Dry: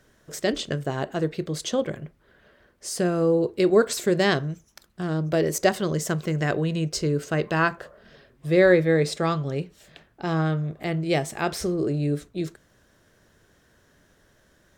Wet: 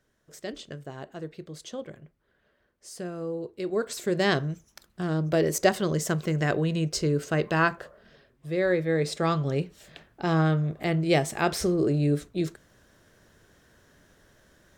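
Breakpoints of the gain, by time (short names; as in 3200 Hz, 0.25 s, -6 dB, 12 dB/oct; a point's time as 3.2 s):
3.6 s -12 dB
4.38 s -1 dB
7.74 s -1 dB
8.58 s -9 dB
9.46 s +1 dB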